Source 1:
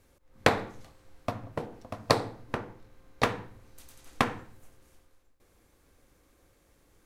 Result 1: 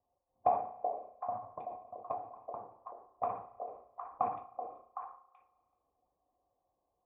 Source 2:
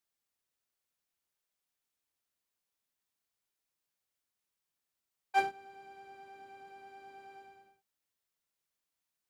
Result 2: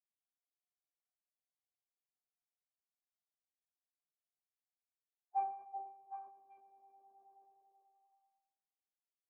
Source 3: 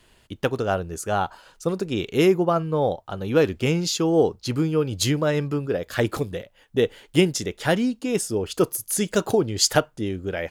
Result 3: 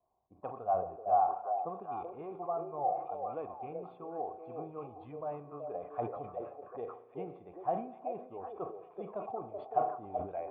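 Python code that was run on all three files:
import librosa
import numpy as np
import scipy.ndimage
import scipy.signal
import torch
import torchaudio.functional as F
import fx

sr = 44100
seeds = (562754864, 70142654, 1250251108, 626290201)

y = fx.spec_quant(x, sr, step_db=15)
y = scipy.signal.sosfilt(scipy.signal.butter(2, 44.0, 'highpass', fs=sr, output='sos'), y)
y = fx.env_lowpass(y, sr, base_hz=600.0, full_db=-20.5)
y = fx.dynamic_eq(y, sr, hz=990.0, q=4.4, threshold_db=-45.0, ratio=4.0, max_db=-6)
y = fx.rider(y, sr, range_db=4, speed_s=0.5)
y = fx.formant_cascade(y, sr, vowel='a')
y = fx.echo_stepped(y, sr, ms=380, hz=480.0, octaves=1.4, feedback_pct=70, wet_db=-2.0)
y = fx.rev_spring(y, sr, rt60_s=1.7, pass_ms=(34,), chirp_ms=65, drr_db=14.0)
y = fx.sustainer(y, sr, db_per_s=100.0)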